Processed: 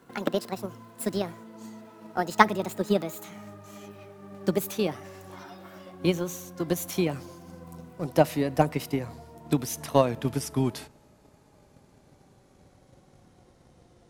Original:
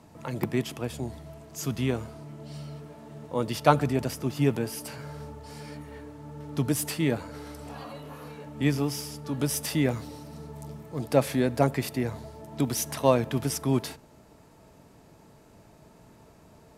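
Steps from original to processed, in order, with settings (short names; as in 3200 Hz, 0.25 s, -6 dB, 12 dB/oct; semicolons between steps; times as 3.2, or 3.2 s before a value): speed glide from 160% -> 78%; transient shaper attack +8 dB, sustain +2 dB; gain -4.5 dB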